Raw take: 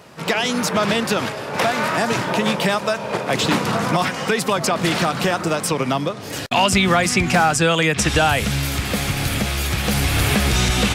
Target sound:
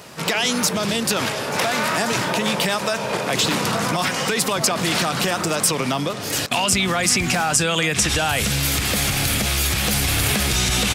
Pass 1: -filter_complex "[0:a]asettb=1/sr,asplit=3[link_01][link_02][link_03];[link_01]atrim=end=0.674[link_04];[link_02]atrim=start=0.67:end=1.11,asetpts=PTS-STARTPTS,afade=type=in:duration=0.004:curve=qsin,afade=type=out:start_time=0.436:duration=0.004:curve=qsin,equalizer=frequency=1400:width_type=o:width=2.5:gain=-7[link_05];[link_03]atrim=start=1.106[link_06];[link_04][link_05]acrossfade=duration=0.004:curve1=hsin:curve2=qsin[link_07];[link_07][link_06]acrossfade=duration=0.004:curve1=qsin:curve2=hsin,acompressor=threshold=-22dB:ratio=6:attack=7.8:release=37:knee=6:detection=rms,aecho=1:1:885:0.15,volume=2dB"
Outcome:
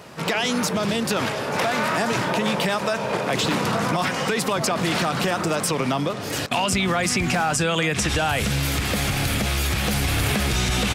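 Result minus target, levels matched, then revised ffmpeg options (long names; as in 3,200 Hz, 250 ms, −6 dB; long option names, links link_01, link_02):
8,000 Hz band −4.5 dB
-filter_complex "[0:a]asettb=1/sr,asplit=3[link_01][link_02][link_03];[link_01]atrim=end=0.674[link_04];[link_02]atrim=start=0.67:end=1.11,asetpts=PTS-STARTPTS,afade=type=in:duration=0.004:curve=qsin,afade=type=out:start_time=0.436:duration=0.004:curve=qsin,equalizer=frequency=1400:width_type=o:width=2.5:gain=-7[link_05];[link_03]atrim=start=1.106[link_06];[link_04][link_05]acrossfade=duration=0.004:curve1=hsin:curve2=qsin[link_07];[link_07][link_06]acrossfade=duration=0.004:curve1=qsin:curve2=hsin,acompressor=threshold=-22dB:ratio=6:attack=7.8:release=37:knee=6:detection=rms,highshelf=frequency=3300:gain=8.5,aecho=1:1:885:0.15,volume=2dB"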